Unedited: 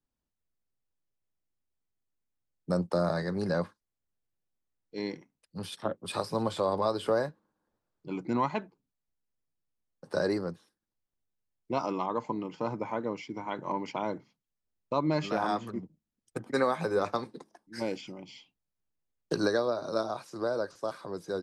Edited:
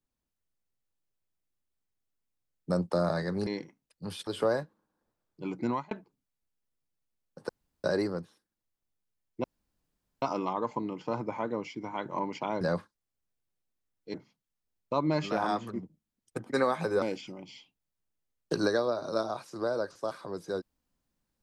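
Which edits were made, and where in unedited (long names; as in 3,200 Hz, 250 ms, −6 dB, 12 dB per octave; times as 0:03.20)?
0:03.47–0:05.00: move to 0:14.14
0:05.80–0:06.93: remove
0:08.32–0:08.57: fade out
0:10.15: splice in room tone 0.35 s
0:11.75: splice in room tone 0.78 s
0:17.02–0:17.82: remove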